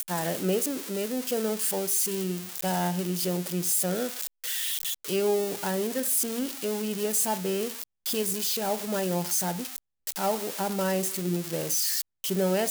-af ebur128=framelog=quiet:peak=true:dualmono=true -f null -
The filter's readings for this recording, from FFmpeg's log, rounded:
Integrated loudness:
  I:         -24.5 LUFS
  Threshold: -34.5 LUFS
Loudness range:
  LRA:         1.3 LU
  Threshold: -44.6 LUFS
  LRA low:   -25.3 LUFS
  LRA high:  -24.0 LUFS
True peak:
  Peak:      -14.5 dBFS